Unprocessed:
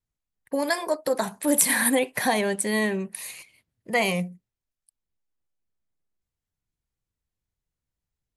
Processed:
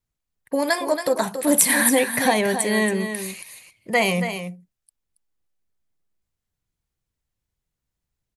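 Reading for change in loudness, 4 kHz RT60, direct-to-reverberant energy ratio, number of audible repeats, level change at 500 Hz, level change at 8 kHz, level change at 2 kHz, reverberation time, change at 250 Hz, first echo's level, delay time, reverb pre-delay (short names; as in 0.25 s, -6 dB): +4.0 dB, none, none, 1, +4.0 dB, +4.0 dB, +4.0 dB, none, +4.0 dB, -9.0 dB, 0.277 s, none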